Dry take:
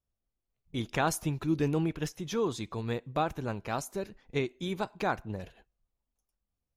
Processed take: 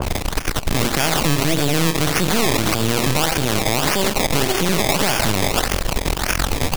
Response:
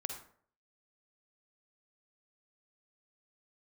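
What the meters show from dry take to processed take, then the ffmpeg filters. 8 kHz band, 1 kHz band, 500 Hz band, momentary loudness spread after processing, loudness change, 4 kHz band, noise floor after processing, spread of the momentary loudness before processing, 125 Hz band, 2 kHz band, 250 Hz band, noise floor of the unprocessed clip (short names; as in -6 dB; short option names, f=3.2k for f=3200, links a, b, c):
+22.0 dB, +13.5 dB, +12.0 dB, 5 LU, +14.5 dB, +23.5 dB, -26 dBFS, 9 LU, +14.0 dB, +18.0 dB, +12.5 dB, under -85 dBFS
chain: -filter_complex "[0:a]aeval=exprs='val(0)+0.5*0.0211*sgn(val(0))':c=same,acrossover=split=130|5600[a][b][c];[b]aecho=1:1:390:0.141[d];[c]asoftclip=type=tanh:threshold=-38dB[e];[a][d][e]amix=inputs=3:normalize=0[f];[1:a]atrim=start_sample=2205,atrim=end_sample=3528[g];[f][g]afir=irnorm=-1:irlink=0,acrusher=samples=21:mix=1:aa=0.000001:lfo=1:lforange=21:lforate=1.7,acompressor=threshold=-37dB:ratio=2,aeval=exprs='0.1*(cos(1*acos(clip(val(0)/0.1,-1,1)))-cos(1*PI/2))+0.0355*(cos(6*acos(clip(val(0)/0.1,-1,1)))-cos(6*PI/2))':c=same,tremolo=f=5.9:d=0.59,alimiter=level_in=33dB:limit=-1dB:release=50:level=0:latency=1,adynamicequalizer=threshold=0.0316:dfrequency=2000:dqfactor=0.7:tfrequency=2000:tqfactor=0.7:attack=5:release=100:ratio=0.375:range=4:mode=boostabove:tftype=highshelf,volume=-8dB"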